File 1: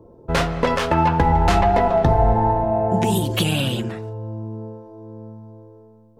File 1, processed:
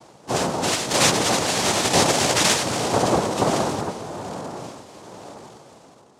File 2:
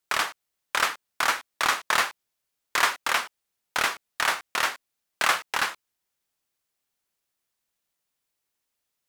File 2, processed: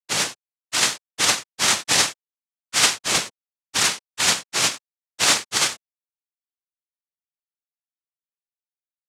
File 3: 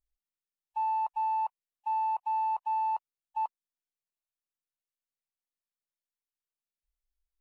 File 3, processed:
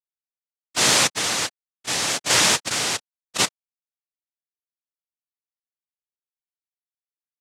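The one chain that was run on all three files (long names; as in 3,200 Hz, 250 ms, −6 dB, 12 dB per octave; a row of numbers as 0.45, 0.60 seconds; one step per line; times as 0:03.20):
partials spread apart or drawn together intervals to 123%
phase shifter 0.3 Hz, delay 1.5 ms, feedback 44%
log-companded quantiser 4 bits
cochlear-implant simulation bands 2
loudness normalisation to −20 LKFS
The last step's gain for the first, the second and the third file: −1.5, +9.5, +9.5 decibels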